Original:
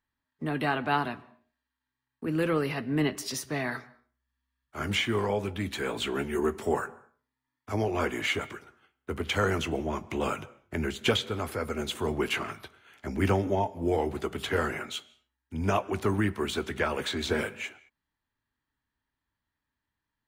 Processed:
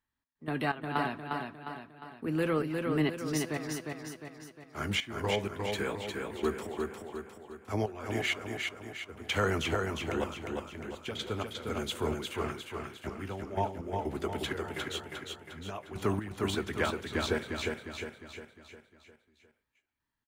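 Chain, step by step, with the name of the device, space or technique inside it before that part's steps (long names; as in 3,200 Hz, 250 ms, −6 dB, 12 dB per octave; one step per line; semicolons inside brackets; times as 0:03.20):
trance gate with a delay (gate pattern "x.x.x..x.x" 63 BPM −12 dB; repeating echo 355 ms, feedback 49%, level −4 dB)
level −2.5 dB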